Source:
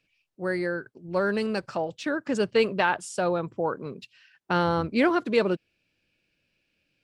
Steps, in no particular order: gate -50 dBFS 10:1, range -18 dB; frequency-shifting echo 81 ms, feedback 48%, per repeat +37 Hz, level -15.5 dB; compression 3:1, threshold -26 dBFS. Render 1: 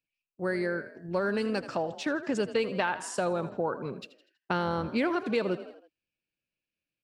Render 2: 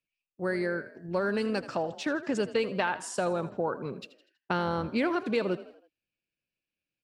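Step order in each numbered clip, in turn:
gate > frequency-shifting echo > compression; gate > compression > frequency-shifting echo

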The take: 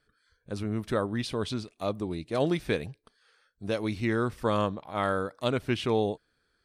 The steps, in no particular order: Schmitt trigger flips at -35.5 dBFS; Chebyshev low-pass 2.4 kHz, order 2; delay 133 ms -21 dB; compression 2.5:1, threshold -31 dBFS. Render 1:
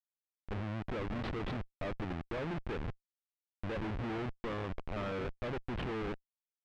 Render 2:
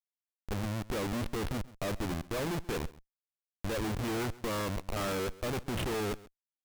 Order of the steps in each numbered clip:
delay > compression > Schmitt trigger > Chebyshev low-pass; Chebyshev low-pass > Schmitt trigger > delay > compression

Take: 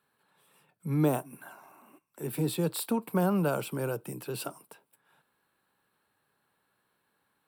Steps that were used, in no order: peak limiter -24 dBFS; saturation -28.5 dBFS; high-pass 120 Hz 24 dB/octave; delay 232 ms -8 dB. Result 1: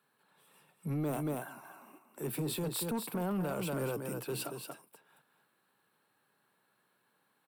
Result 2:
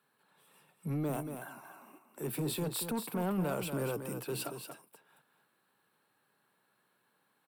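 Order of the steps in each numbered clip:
delay > peak limiter > high-pass > saturation; high-pass > peak limiter > saturation > delay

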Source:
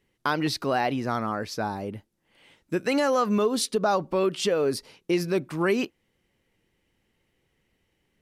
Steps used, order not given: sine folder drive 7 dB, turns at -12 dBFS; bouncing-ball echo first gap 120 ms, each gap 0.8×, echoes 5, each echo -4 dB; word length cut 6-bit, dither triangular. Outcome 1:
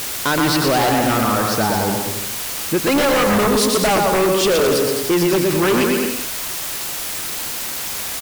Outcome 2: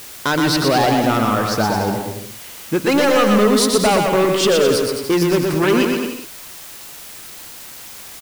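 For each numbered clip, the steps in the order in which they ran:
bouncing-ball echo > word length cut > sine folder; sine folder > bouncing-ball echo > word length cut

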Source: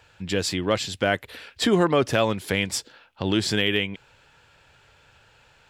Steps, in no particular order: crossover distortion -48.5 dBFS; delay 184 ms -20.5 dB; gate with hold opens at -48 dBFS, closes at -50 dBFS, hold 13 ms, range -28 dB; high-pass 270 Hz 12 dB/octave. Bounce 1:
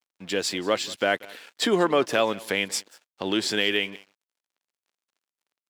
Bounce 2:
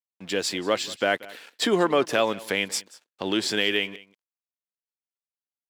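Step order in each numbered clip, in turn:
gate with hold > delay > crossover distortion > high-pass; crossover distortion > delay > gate with hold > high-pass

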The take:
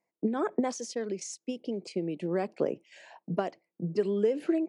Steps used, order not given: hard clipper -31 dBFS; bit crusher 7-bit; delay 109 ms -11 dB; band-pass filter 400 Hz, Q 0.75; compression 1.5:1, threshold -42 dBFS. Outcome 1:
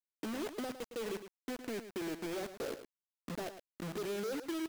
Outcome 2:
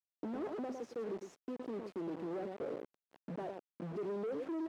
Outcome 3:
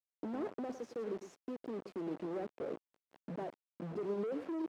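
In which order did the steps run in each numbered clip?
hard clipper > compression > band-pass filter > bit crusher > delay; delay > hard clipper > compression > bit crusher > band-pass filter; hard clipper > compression > delay > bit crusher > band-pass filter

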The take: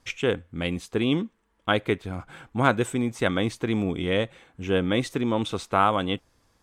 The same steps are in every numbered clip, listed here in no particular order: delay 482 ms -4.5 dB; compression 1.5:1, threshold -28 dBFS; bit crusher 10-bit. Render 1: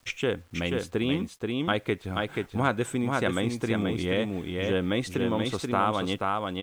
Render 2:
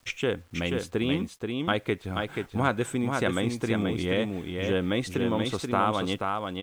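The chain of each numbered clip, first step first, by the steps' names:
bit crusher > delay > compression; bit crusher > compression > delay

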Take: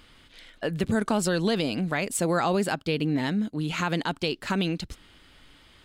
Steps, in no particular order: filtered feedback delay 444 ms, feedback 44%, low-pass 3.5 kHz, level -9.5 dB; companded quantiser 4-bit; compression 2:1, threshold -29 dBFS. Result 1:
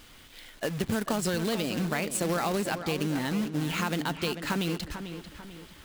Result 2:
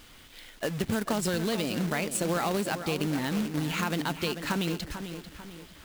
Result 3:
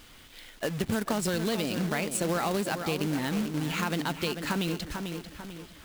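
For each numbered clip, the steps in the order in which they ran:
compression > companded quantiser > filtered feedback delay; compression > filtered feedback delay > companded quantiser; filtered feedback delay > compression > companded quantiser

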